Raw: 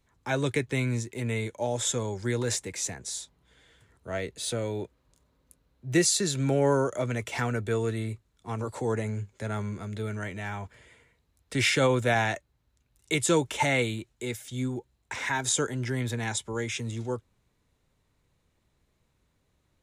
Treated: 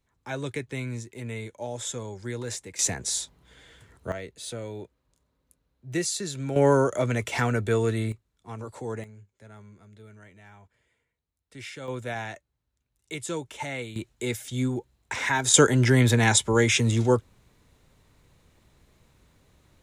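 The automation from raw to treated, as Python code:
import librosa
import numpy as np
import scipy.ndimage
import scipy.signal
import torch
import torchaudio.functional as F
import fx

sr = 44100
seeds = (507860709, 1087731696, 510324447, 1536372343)

y = fx.gain(x, sr, db=fx.steps((0.0, -5.0), (2.79, 7.0), (4.12, -5.0), (6.56, 4.0), (8.12, -5.0), (9.04, -16.0), (11.88, -8.5), (13.96, 4.0), (15.54, 11.0)))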